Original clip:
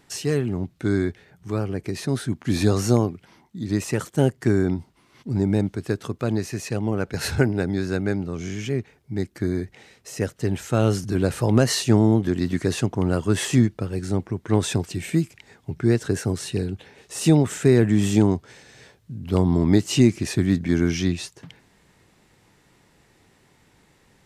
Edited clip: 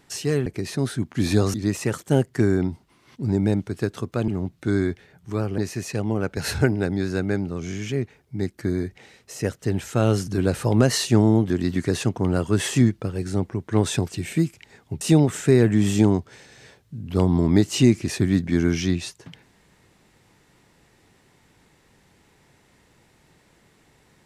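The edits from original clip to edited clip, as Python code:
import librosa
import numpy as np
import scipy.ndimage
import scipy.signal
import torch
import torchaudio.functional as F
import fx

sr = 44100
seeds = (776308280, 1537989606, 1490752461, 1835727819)

y = fx.edit(x, sr, fx.move(start_s=0.46, length_s=1.3, to_s=6.35),
    fx.cut(start_s=2.84, length_s=0.77),
    fx.cut(start_s=15.78, length_s=1.4), tone=tone)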